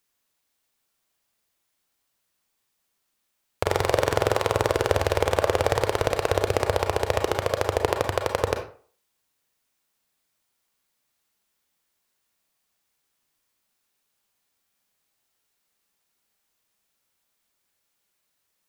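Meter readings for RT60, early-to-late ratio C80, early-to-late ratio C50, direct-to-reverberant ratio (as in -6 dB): 0.45 s, 12.5 dB, 8.0 dB, 4.5 dB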